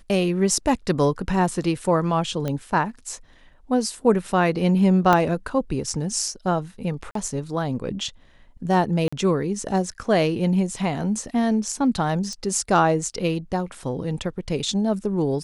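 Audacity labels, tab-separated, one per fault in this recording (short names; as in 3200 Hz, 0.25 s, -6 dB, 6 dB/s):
2.480000	2.480000	pop -14 dBFS
5.130000	5.130000	pop -6 dBFS
7.110000	7.150000	gap 43 ms
9.080000	9.120000	gap 45 ms
12.330000	12.330000	pop -22 dBFS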